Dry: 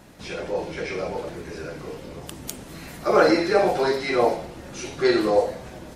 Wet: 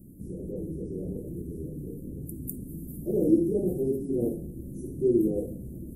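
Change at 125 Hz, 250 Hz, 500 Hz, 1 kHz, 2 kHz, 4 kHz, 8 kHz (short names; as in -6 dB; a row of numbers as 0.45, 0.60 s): +3.0 dB, 0.0 dB, -8.0 dB, under -30 dB, under -40 dB, under -40 dB, -10.0 dB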